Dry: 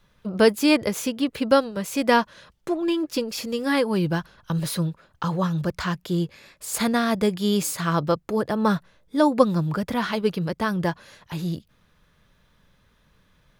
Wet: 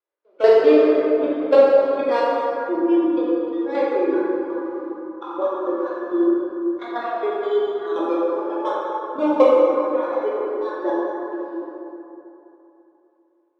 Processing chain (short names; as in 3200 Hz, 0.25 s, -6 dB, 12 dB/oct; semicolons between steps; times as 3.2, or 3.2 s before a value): switching dead time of 0.18 ms; LPF 5000 Hz 12 dB/oct; spectral noise reduction 19 dB; steep high-pass 320 Hz 72 dB/oct; tilt -4 dB/oct; level quantiser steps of 12 dB; plate-style reverb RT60 3.2 s, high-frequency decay 0.45×, DRR -7.5 dB